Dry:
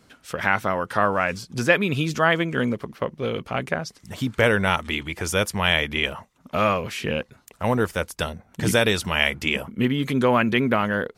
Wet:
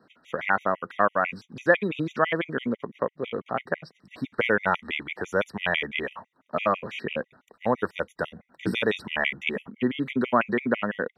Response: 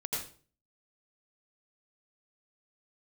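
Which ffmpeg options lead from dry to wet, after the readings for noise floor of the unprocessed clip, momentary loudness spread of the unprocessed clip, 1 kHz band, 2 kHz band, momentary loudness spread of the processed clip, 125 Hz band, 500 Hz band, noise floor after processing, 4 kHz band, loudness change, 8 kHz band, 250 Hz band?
−59 dBFS, 9 LU, −3.0 dB, −4.0 dB, 10 LU, −11.0 dB, −3.0 dB, −71 dBFS, −9.0 dB, −4.5 dB, below −20 dB, −5.0 dB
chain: -filter_complex "[0:a]acrossover=split=170 3300:gain=0.158 1 0.0794[link_01][link_02][link_03];[link_01][link_02][link_03]amix=inputs=3:normalize=0,afftfilt=real='re*gt(sin(2*PI*6*pts/sr)*(1-2*mod(floor(b*sr/1024/1900),2)),0)':imag='im*gt(sin(2*PI*6*pts/sr)*(1-2*mod(floor(b*sr/1024/1900),2)),0)':win_size=1024:overlap=0.75"

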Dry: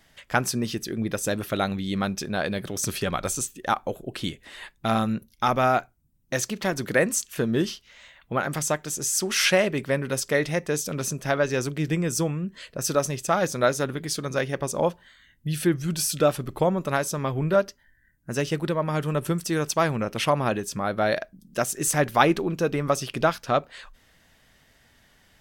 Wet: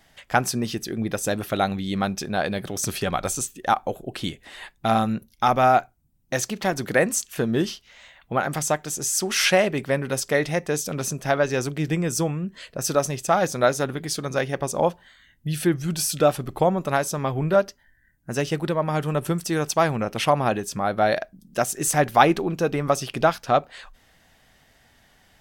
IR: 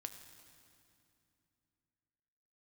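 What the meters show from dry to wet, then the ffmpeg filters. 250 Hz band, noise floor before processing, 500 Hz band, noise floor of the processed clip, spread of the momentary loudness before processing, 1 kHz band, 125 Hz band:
+1.0 dB, −62 dBFS, +2.0 dB, −60 dBFS, 8 LU, +4.0 dB, +1.0 dB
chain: -af "equalizer=frequency=760:width_type=o:width=0.34:gain=6,volume=1dB"

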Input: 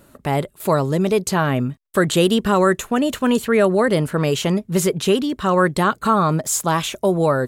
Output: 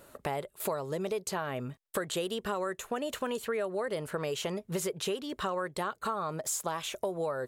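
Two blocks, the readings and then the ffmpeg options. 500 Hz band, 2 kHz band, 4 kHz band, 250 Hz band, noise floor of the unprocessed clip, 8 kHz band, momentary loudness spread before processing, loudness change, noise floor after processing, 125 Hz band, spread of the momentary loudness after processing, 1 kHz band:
−14.5 dB, −15.0 dB, −12.5 dB, −20.0 dB, −55 dBFS, −11.5 dB, 5 LU, −15.5 dB, −69 dBFS, −20.5 dB, 3 LU, −15.0 dB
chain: -af "lowshelf=frequency=350:width_type=q:width=1.5:gain=-6.5,acompressor=threshold=-28dB:ratio=6,volume=-3dB"

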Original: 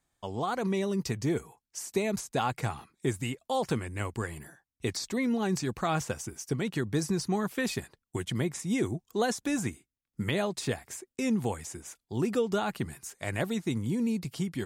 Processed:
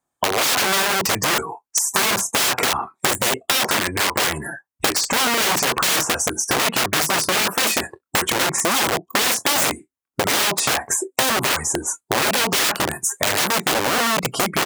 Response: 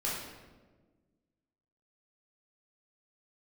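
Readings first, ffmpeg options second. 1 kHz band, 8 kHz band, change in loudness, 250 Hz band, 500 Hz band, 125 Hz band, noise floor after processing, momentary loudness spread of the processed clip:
+14.5 dB, +20.0 dB, +13.0 dB, +1.5 dB, +7.5 dB, 0.0 dB, −81 dBFS, 5 LU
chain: -filter_complex "[0:a]aphaser=in_gain=1:out_gain=1:delay=3.2:decay=0.21:speed=0.93:type=sinusoidal,equalizer=frequency=1000:width_type=o:width=1:gain=4,equalizer=frequency=2000:width_type=o:width=1:gain=-5,equalizer=frequency=4000:width_type=o:width=1:gain=-7,acontrast=38,asplit=2[link_01][link_02];[link_02]adelay=26,volume=-12dB[link_03];[link_01][link_03]amix=inputs=2:normalize=0,aecho=1:1:23|39:0.158|0.141,apsyclip=19.5dB,afftdn=noise_reduction=28:noise_floor=-26,adynamicequalizer=threshold=0.0631:dfrequency=1700:dqfactor=0.92:tfrequency=1700:tqfactor=0.92:attack=5:release=100:ratio=0.375:range=3.5:mode=boostabove:tftype=bell,aeval=exprs='(mod(1.68*val(0)+1,2)-1)/1.68':channel_layout=same,acompressor=threshold=-21dB:ratio=6,highpass=frequency=320:poles=1,volume=3.5dB"

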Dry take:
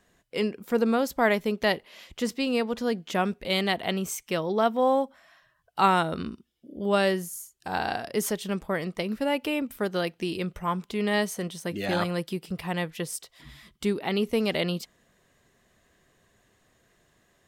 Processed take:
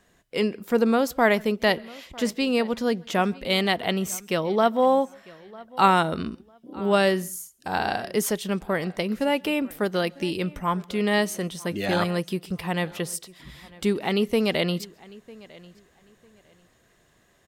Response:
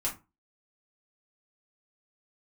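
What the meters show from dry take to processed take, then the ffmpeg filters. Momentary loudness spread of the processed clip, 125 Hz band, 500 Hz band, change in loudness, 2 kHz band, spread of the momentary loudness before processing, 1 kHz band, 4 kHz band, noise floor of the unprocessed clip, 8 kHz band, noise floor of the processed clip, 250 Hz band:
11 LU, +3.0 dB, +3.0 dB, +3.0 dB, +3.0 dB, 10 LU, +3.0 dB, +3.0 dB, −68 dBFS, +3.0 dB, −62 dBFS, +3.0 dB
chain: -filter_complex "[0:a]asplit=2[link_01][link_02];[link_02]adelay=950,lowpass=frequency=4700:poles=1,volume=-22dB,asplit=2[link_03][link_04];[link_04]adelay=950,lowpass=frequency=4700:poles=1,volume=0.23[link_05];[link_01][link_03][link_05]amix=inputs=3:normalize=0,asplit=2[link_06][link_07];[1:a]atrim=start_sample=2205,asetrate=79380,aresample=44100,adelay=132[link_08];[link_07][link_08]afir=irnorm=-1:irlink=0,volume=-27.5dB[link_09];[link_06][link_09]amix=inputs=2:normalize=0,volume=3dB"

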